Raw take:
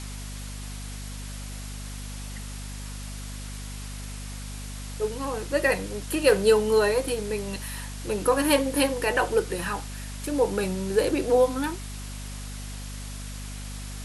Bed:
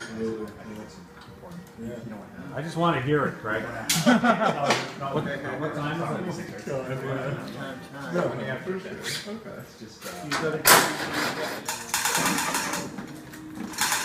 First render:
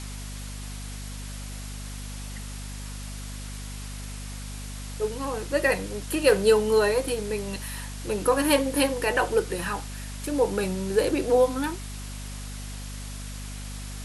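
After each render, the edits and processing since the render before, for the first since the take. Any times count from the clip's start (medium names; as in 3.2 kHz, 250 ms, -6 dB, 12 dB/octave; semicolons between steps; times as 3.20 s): no audible change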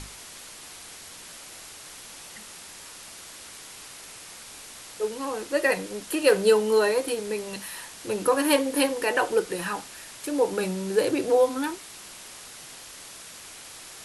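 hum notches 50/100/150/200/250 Hz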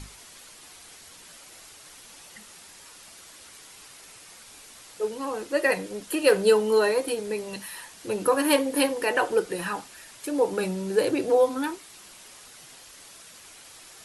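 noise reduction 6 dB, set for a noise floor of -44 dBFS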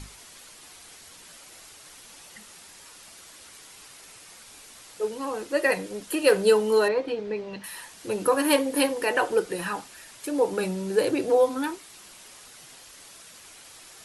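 6.88–7.64 s: distance through air 210 m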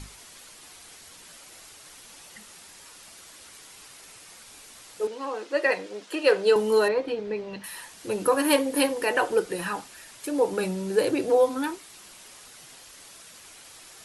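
5.07–6.56 s: band-pass 330–5600 Hz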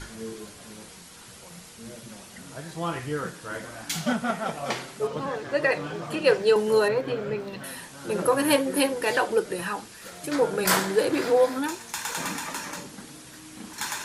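add bed -7 dB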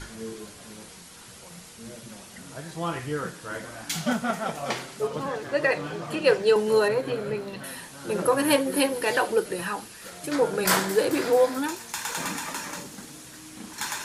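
feedback echo behind a high-pass 218 ms, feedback 77%, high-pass 5.4 kHz, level -12.5 dB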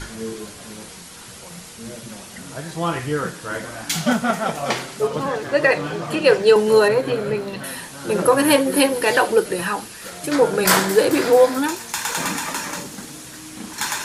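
trim +7 dB; peak limiter -3 dBFS, peak gain reduction 2 dB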